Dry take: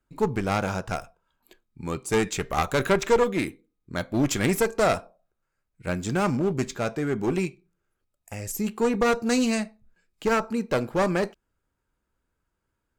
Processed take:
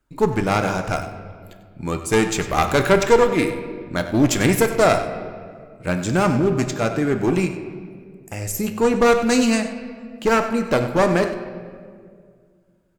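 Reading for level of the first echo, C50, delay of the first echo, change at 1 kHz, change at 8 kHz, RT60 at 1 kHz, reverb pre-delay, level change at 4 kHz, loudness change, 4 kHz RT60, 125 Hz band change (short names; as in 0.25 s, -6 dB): -13.0 dB, 8.0 dB, 96 ms, +6.5 dB, +6.0 dB, 1.7 s, 3 ms, +6.0 dB, +6.0 dB, 1.2 s, +6.5 dB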